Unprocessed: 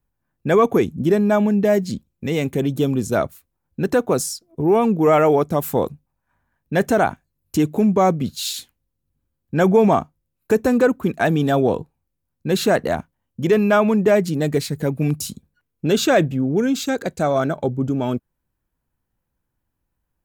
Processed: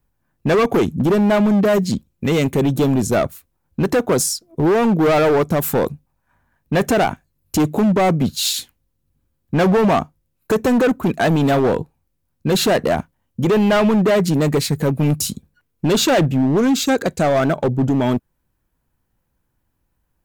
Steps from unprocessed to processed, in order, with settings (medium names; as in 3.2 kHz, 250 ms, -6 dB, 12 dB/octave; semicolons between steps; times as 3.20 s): in parallel at +0.5 dB: peak limiter -13.5 dBFS, peak gain reduction 8.5 dB; on the sum: hard clipper -12 dBFS, distortion -11 dB